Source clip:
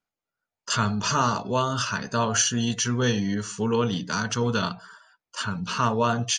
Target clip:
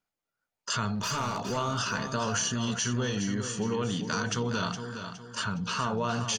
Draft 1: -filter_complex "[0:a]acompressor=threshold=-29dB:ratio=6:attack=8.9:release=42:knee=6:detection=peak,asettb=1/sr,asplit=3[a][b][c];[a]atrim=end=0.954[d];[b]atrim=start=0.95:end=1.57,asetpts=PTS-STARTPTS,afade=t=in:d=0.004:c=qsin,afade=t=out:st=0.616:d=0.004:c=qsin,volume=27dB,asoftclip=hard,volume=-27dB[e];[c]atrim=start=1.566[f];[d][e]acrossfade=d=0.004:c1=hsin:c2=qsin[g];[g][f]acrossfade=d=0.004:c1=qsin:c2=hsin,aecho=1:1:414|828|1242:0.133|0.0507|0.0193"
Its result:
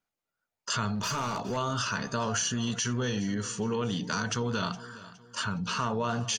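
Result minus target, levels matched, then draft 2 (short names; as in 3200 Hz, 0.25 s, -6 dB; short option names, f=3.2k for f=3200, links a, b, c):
echo-to-direct -9 dB
-filter_complex "[0:a]acompressor=threshold=-29dB:ratio=6:attack=8.9:release=42:knee=6:detection=peak,asettb=1/sr,asplit=3[a][b][c];[a]atrim=end=0.954[d];[b]atrim=start=0.95:end=1.57,asetpts=PTS-STARTPTS,afade=t=in:d=0.004:c=qsin,afade=t=out:st=0.616:d=0.004:c=qsin,volume=27dB,asoftclip=hard,volume=-27dB[e];[c]atrim=start=1.566[f];[d][e]acrossfade=d=0.004:c1=hsin:c2=qsin[g];[g][f]acrossfade=d=0.004:c1=qsin:c2=hsin,aecho=1:1:414|828|1242|1656:0.376|0.143|0.0543|0.0206"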